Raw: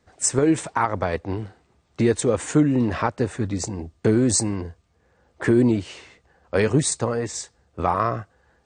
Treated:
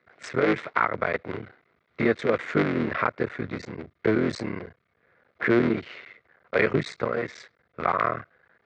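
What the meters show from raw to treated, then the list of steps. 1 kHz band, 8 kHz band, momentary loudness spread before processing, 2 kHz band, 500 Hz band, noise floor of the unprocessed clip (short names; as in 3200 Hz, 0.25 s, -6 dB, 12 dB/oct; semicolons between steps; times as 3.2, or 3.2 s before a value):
-2.0 dB, under -25 dB, 13 LU, +4.0 dB, -2.5 dB, -65 dBFS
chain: cycle switcher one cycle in 3, muted; speaker cabinet 170–3700 Hz, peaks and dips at 190 Hz -4 dB, 290 Hz -6 dB, 850 Hz -8 dB, 1400 Hz +6 dB, 2100 Hz +9 dB, 2900 Hz -5 dB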